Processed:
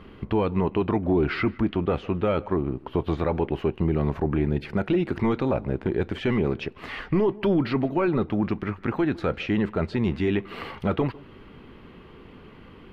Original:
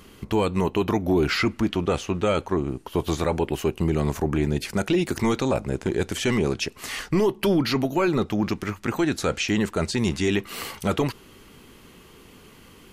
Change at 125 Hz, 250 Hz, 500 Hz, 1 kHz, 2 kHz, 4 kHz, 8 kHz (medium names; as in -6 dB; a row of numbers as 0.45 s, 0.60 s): 0.0 dB, -0.5 dB, -1.0 dB, -2.0 dB, -4.0 dB, -9.5 dB, under -25 dB